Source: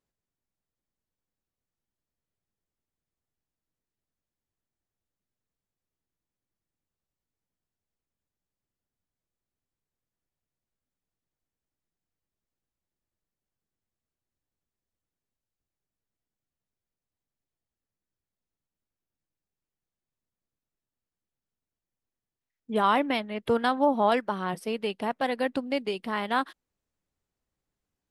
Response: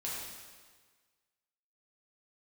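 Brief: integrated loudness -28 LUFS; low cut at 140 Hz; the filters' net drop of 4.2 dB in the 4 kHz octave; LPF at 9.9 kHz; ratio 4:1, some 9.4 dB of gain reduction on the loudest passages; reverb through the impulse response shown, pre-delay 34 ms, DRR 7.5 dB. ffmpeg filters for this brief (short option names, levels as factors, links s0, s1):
-filter_complex "[0:a]highpass=140,lowpass=9900,equalizer=f=4000:t=o:g=-6,acompressor=threshold=0.0355:ratio=4,asplit=2[s0][s1];[1:a]atrim=start_sample=2205,adelay=34[s2];[s1][s2]afir=irnorm=-1:irlink=0,volume=0.316[s3];[s0][s3]amix=inputs=2:normalize=0,volume=1.88"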